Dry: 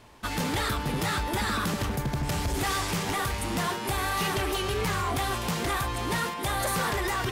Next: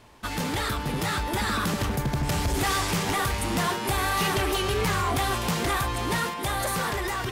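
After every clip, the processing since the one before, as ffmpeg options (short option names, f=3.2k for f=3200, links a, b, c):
-af "dynaudnorm=f=610:g=5:m=3dB"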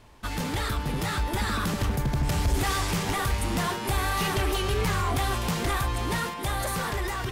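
-af "lowshelf=f=77:g=10,volume=-2.5dB"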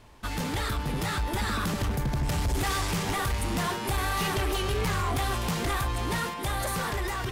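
-af "asoftclip=type=tanh:threshold=-21dB"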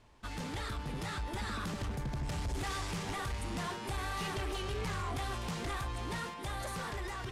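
-af "lowpass=9.4k,volume=-9dB"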